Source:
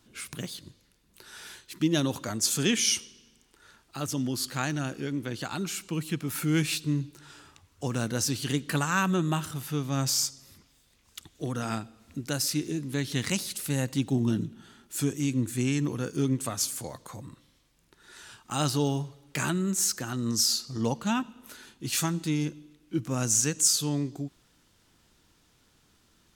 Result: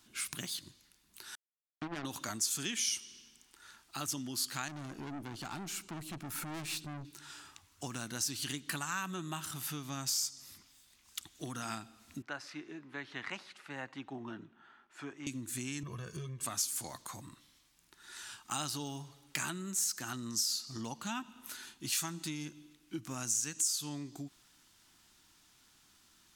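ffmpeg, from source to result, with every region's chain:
-filter_complex "[0:a]asettb=1/sr,asplit=3[a][b][c];[a]atrim=end=1.354[d];[b]atrim=start=1.35:end=2.05,asetpts=PTS-STARTPTS,afade=t=in:d=0.004:c=qsin,afade=t=out:st=0.696:d=0.004:c=qsin,lowpass=f=2.1k:w=0.5412,lowpass=f=2.1k:w=1.3066,acompressor=threshold=-32dB:ratio=2.5:attack=3.2:release=140:knee=1:detection=peak,acrusher=bits=4:mix=0:aa=0.5[e];[c]atrim=start=2.046[f];[d][e]acrossfade=d=0.004:c1=hsin:c2=qsin[g];[g][f]acrossfade=d=0.004:c1=qsin:c2=hsin,asettb=1/sr,asplit=3[h][i][j];[h]atrim=end=4.684[k];[i]atrim=start=4.68:end=7.05,asetpts=PTS-STARTPTS,afade=t=in:d=0.004:c=qsin,afade=t=out:st=2.366:d=0.004:c=qsin,tiltshelf=f=1.1k:g=6,aeval=exprs='(tanh(39.8*val(0)+0.45)-tanh(0.45))/39.8':c=same[l];[j]atrim=start=7.046[m];[k][l]acrossfade=d=0.004:c1=hsin:c2=qsin[n];[n][m]acrossfade=d=0.004:c1=qsin:c2=hsin,asettb=1/sr,asplit=3[o][p][q];[o]atrim=end=12.224[r];[p]atrim=start=12.22:end=15.27,asetpts=PTS-STARTPTS,afade=t=in:d=0.004:c=qsin,afade=t=out:st=3.046:d=0.004:c=qsin,lowpass=4.9k,acrossover=split=430 2100:gain=0.158 1 0.0891[s][t][u];[s][t][u]amix=inputs=3:normalize=0[v];[q]atrim=start=15.266[w];[r][v]acrossfade=d=0.004:c1=hsin:c2=qsin[x];[x][w]acrossfade=d=0.004:c1=qsin:c2=hsin,asettb=1/sr,asplit=3[y][z][aa];[y]atrim=end=15.834[ab];[z]atrim=start=15.83:end=16.43,asetpts=PTS-STARTPTS,afade=t=in:d=0.004:c=qsin,afade=t=out:st=0.596:d=0.004:c=qsin,bass=f=250:g=6,treble=f=4k:g=-10,aecho=1:1:1.8:0.99,atrim=end_sample=26460,acompressor=threshold=-28dB:ratio=2:attack=3.2:release=140:knee=1:detection=peak[ac];[aa]atrim=start=16.426[ad];[ab][ac]acrossfade=d=0.004:c1=hsin:c2=qsin[ae];[ae][ad]acrossfade=d=0.004:c1=qsin:c2=hsin,equalizer=f=490:w=2.2:g=-12.5,acompressor=threshold=-33dB:ratio=6,bass=f=250:g=-9,treble=f=4k:g=3"

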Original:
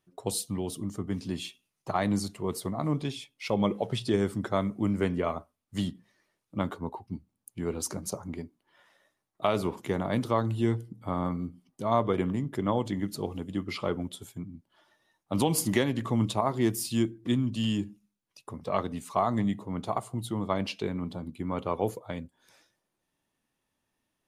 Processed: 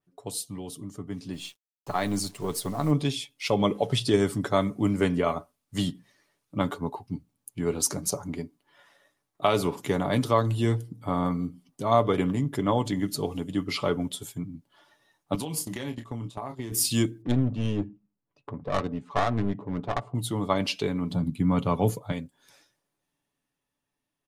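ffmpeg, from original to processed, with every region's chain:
-filter_complex "[0:a]asettb=1/sr,asplit=3[a][b][c];[a]atrim=end=1.334[d];[b]atrim=start=1.33:end=2.91,asetpts=PTS-STARTPTS,afade=t=in:d=0.004:c=qsin,afade=t=out:st=1.576:d=0.004:c=qsin,aeval=exprs='if(lt(val(0),0),0.708*val(0),val(0))':c=same,acrusher=bits=8:mix=0:aa=0.5[e];[c]atrim=start=2.906[f];[d][e]acrossfade=d=0.004:c1=hsin:c2=qsin[g];[g][f]acrossfade=d=0.004:c1=qsin:c2=hsin,asettb=1/sr,asplit=3[h][i][j];[h]atrim=end=15.354[k];[i]atrim=start=15.35:end=16.72,asetpts=PTS-STARTPTS,afade=t=in:d=0.004:c=qsin,afade=t=out:st=1.366:d=0.004:c=qsin,agate=range=-20dB:threshold=-30dB:ratio=16:release=100:detection=peak,asplit=2[l][m];[m]adelay=26,volume=-9.5dB[n];[l][n]amix=inputs=2:normalize=0,atrim=end_sample=60417,acompressor=threshold=-35dB:ratio=6:attack=3.2:release=140:knee=1:detection=peak[o];[j]atrim=start=16.716[p];[k][o]acrossfade=d=0.004:c1=hsin:c2=qsin[q];[q][p]acrossfade=d=0.004:c1=qsin:c2=hsin,asettb=1/sr,asplit=3[r][s][t];[r]atrim=end=17.224[u];[s]atrim=start=17.22:end=20.15,asetpts=PTS-STARTPTS,afade=t=in:d=0.004:c=qsin,afade=t=out:st=2.926:d=0.004:c=qsin,aeval=exprs='clip(val(0),-1,0.0237)':c=same,adynamicsmooth=sensitivity=3:basefreq=1.2k[v];[t]atrim=start=20.146[w];[u][v]acrossfade=d=0.004:c1=hsin:c2=qsin[x];[x][w]acrossfade=d=0.004:c1=qsin:c2=hsin,asettb=1/sr,asplit=3[y][z][aa];[y]atrim=end=21.114[ab];[z]atrim=start=21.11:end=22.12,asetpts=PTS-STARTPTS,afade=t=in:d=0.004:c=qsin,afade=t=out:st=1.006:d=0.004:c=qsin,highpass=41,lowshelf=f=270:t=q:w=1.5:g=7[ac];[aa]atrim=start=22.116[ad];[ab][ac]acrossfade=d=0.004:c1=hsin:c2=qsin[ae];[ae][ad]acrossfade=d=0.004:c1=qsin:c2=hsin,aecho=1:1:7:0.38,dynaudnorm=f=220:g=17:m=9dB,adynamicequalizer=threshold=0.0112:dfrequency=3000:dqfactor=0.7:tfrequency=3000:tqfactor=0.7:attack=5:release=100:ratio=0.375:range=2.5:mode=boostabove:tftype=highshelf,volume=-5dB"

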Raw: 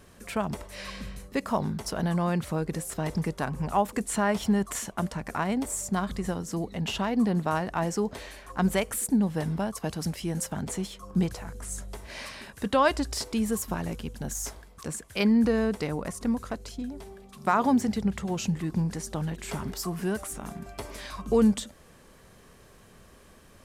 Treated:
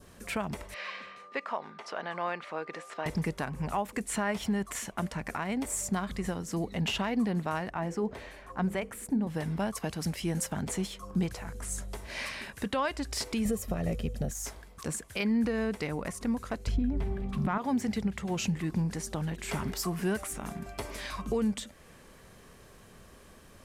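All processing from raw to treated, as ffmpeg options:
-filter_complex "[0:a]asettb=1/sr,asplit=3[a][b][c];[a]atrim=end=0.744[d];[b]atrim=start=0.74:end=3.06,asetpts=PTS-STARTPTS,afade=t=in:d=0.004:c=qsin,afade=t=out:st=2.316:d=0.004:c=qsin,aeval=exprs='val(0)+0.00355*sin(2*PI*1200*n/s)':c=same,highpass=550,lowpass=3.3k[e];[c]atrim=start=3.056[f];[d][e]acrossfade=d=0.004:c1=hsin:c2=qsin[g];[g][f]acrossfade=d=0.004:c1=qsin:c2=hsin,asettb=1/sr,asplit=3[h][i][j];[h]atrim=end=7.704[k];[i]atrim=start=7.7:end=9.27,asetpts=PTS-STARTPTS,afade=t=in:d=0.004:c=qsin,afade=t=out:st=1.566:d=0.004:c=qsin,highshelf=f=2.3k:g=-11,bandreject=f=50:t=h:w=6,bandreject=f=100:t=h:w=6,bandreject=f=150:t=h:w=6,bandreject=f=200:t=h:w=6,bandreject=f=250:t=h:w=6,bandreject=f=300:t=h:w=6,bandreject=f=350:t=h:w=6,bandreject=f=400:t=h:w=6,bandreject=f=450:t=h:w=6,bandreject=f=500:t=h:w=6[l];[j]atrim=start=9.266[m];[k][l]acrossfade=d=0.004:c1=hsin:c2=qsin[n];[n][m]acrossfade=d=0.004:c1=qsin:c2=hsin,asettb=1/sr,asplit=3[o][p][q];[o]atrim=end=13.454[r];[p]atrim=start=13.45:end=14.31,asetpts=PTS-STARTPTS,afade=t=in:d=0.004:c=qsin,afade=t=out:st=0.856:d=0.004:c=qsin,lowshelf=f=730:t=q:w=1.5:g=7,aecho=1:1:1.6:0.46,atrim=end_sample=37926[s];[q]atrim=start=14.306[t];[r][s]acrossfade=d=0.004:c1=hsin:c2=qsin[u];[u][t]acrossfade=d=0.004:c1=qsin:c2=hsin,asettb=1/sr,asplit=3[v][w][x];[v]atrim=end=16.674[y];[w]atrim=start=16.67:end=17.58,asetpts=PTS-STARTPTS,afade=t=in:d=0.004:c=qsin,afade=t=out:st=0.906:d=0.004:c=qsin,bass=f=250:g=14,treble=f=4k:g=-13,acontrast=73[z];[x]atrim=start=17.576[aa];[y][z]acrossfade=d=0.004:c1=hsin:c2=qsin[ab];[ab][aa]acrossfade=d=0.004:c1=qsin:c2=hsin,adynamicequalizer=threshold=0.00447:dfrequency=2200:dqfactor=1.6:tfrequency=2200:tqfactor=1.6:attack=5:release=100:ratio=0.375:range=3:mode=boostabove:tftype=bell,alimiter=limit=-21dB:level=0:latency=1:release=444"

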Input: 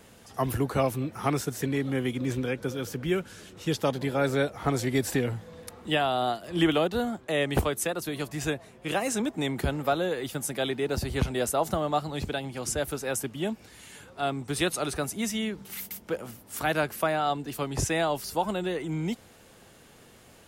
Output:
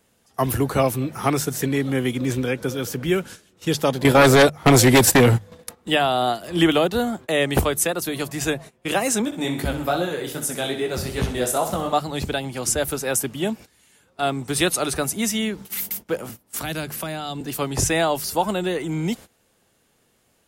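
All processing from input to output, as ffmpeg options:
-filter_complex "[0:a]asettb=1/sr,asplit=3[a][b][c];[a]atrim=end=4.044[d];[b]atrim=start=4.04:end=5.52,asetpts=PTS-STARTPTS,afade=t=in:d=0.004:c=qsin,afade=t=out:st=1.476:d=0.004:c=qsin,agate=range=-20dB:threshold=-34dB:ratio=16:release=100:detection=peak,aeval=exprs='0.2*sin(PI/2*2.24*val(0)/0.2)':c=same[e];[c]atrim=start=5.516[f];[d][e]acrossfade=d=0.004:c1=hsin:c2=qsin[g];[g][f]acrossfade=d=0.004:c1=qsin:c2=hsin,asettb=1/sr,asplit=3[h][i][j];[h]atrim=end=9.254[k];[i]atrim=start=9.25:end=11.93,asetpts=PTS-STARTPTS,afade=t=in:d=0.004:c=qsin,afade=t=out:st=2.676:d=0.004:c=qsin,flanger=delay=17:depth=7.1:speed=2.5,aecho=1:1:63|126|189|252|315|378:0.335|0.171|0.0871|0.0444|0.0227|0.0116,atrim=end_sample=118188[l];[j]atrim=start=11.926[m];[k][l]acrossfade=d=0.004:c1=hsin:c2=qsin[n];[n][m]acrossfade=d=0.004:c1=qsin:c2=hsin,asettb=1/sr,asplit=3[o][p][q];[o]atrim=end=16.294[r];[p]atrim=start=16.29:end=17.41,asetpts=PTS-STARTPTS,afade=t=in:d=0.004:c=qsin,afade=t=out:st=1.116:d=0.004:c=qsin,highshelf=f=6.9k:g=-3.5,acrossover=split=270|3000[s][t][u];[t]acompressor=threshold=-36dB:ratio=6:attack=3.2:release=140:knee=2.83:detection=peak[v];[s][v][u]amix=inputs=3:normalize=0[w];[q]atrim=start=17.406[x];[r][w]acrossfade=d=0.004:c1=hsin:c2=qsin[y];[y][x]acrossfade=d=0.004:c1=qsin:c2=hsin,bandreject=f=50:t=h:w=6,bandreject=f=100:t=h:w=6,bandreject=f=150:t=h:w=6,agate=range=-17dB:threshold=-43dB:ratio=16:detection=peak,highshelf=f=6.1k:g=5.5,volume=6dB"

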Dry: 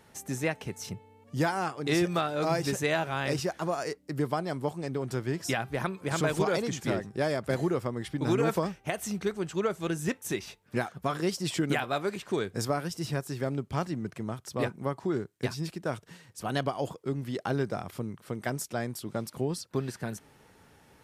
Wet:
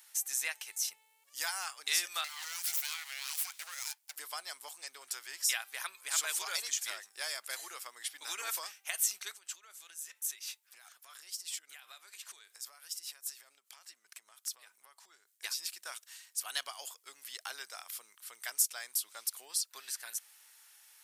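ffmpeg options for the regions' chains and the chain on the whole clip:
-filter_complex "[0:a]asettb=1/sr,asplit=3[a][b][c];[a]atrim=end=2.244[d];[b]atrim=start=2.24:end=4.16,asetpts=PTS-STARTPTS,afade=t=in:d=0.004:c=qsin,afade=t=out:st=1.916:d=0.004:c=qsin,highpass=430,acompressor=threshold=-32dB:ratio=2.5:attack=3.2:release=140:knee=1:detection=peak,aeval=exprs='abs(val(0))':c=same[e];[c]atrim=start=4.156[f];[d][e]acrossfade=d=0.004:c1=hsin:c2=qsin[g];[g][f]acrossfade=d=0.004:c1=qsin:c2=hsin,asettb=1/sr,asplit=3[h][i][j];[h]atrim=end=9.314[k];[i]atrim=start=9.31:end=15.44,asetpts=PTS-STARTPTS,afade=t=in:d=0.004:c=qsin,afade=t=out:st=6.126:d=0.004:c=qsin,acompressor=threshold=-38dB:ratio=16:attack=3.2:release=140:knee=1:detection=peak,tremolo=f=5:d=0.39[l];[j]atrim=start=15.436[m];[k][l]acrossfade=d=0.004:c1=hsin:c2=qsin[n];[n][m]acrossfade=d=0.004:c1=qsin:c2=hsin,highpass=960,aderivative,volume=8.5dB"

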